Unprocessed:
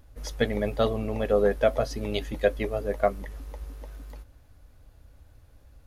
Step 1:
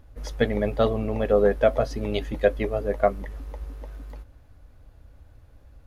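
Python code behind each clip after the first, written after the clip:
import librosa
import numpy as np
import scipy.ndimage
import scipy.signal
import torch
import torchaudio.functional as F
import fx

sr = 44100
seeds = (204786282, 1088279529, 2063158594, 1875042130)

y = fx.high_shelf(x, sr, hz=3700.0, db=-8.5)
y = F.gain(torch.from_numpy(y), 3.0).numpy()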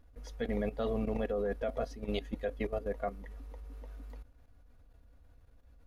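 y = x + 0.43 * np.pad(x, (int(4.2 * sr / 1000.0), 0))[:len(x)]
y = fx.level_steps(y, sr, step_db=13)
y = F.gain(torch.from_numpy(y), -6.0).numpy()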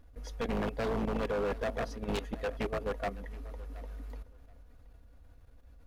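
y = 10.0 ** (-30.0 / 20.0) * (np.abs((x / 10.0 ** (-30.0 / 20.0) + 3.0) % 4.0 - 2.0) - 1.0)
y = fx.echo_feedback(y, sr, ms=725, feedback_pct=18, wet_db=-19)
y = F.gain(torch.from_numpy(y), 3.5).numpy()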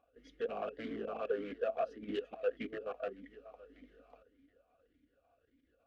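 y = fx.vowel_sweep(x, sr, vowels='a-i', hz=1.7)
y = F.gain(torch.from_numpy(y), 5.5).numpy()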